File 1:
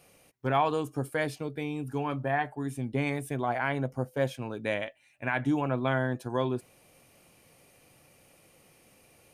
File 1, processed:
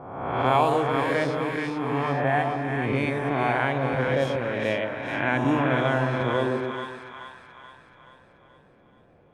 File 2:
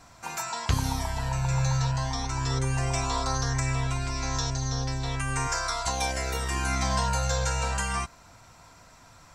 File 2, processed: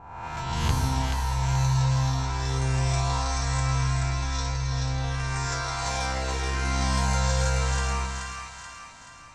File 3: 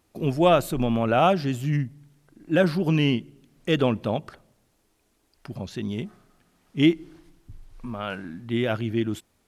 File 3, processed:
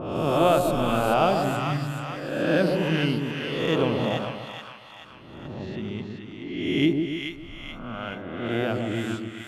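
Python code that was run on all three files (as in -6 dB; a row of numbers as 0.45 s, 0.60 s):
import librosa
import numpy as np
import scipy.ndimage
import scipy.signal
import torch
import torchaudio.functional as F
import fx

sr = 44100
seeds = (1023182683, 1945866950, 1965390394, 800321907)

y = fx.spec_swells(x, sr, rise_s=1.39)
y = fx.env_lowpass(y, sr, base_hz=830.0, full_db=-19.0)
y = fx.echo_split(y, sr, split_hz=920.0, low_ms=137, high_ms=430, feedback_pct=52, wet_db=-4.0)
y = y * 10.0 ** (-26 / 20.0) / np.sqrt(np.mean(np.square(y)))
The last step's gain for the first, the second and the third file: +1.5 dB, -4.0 dB, -5.0 dB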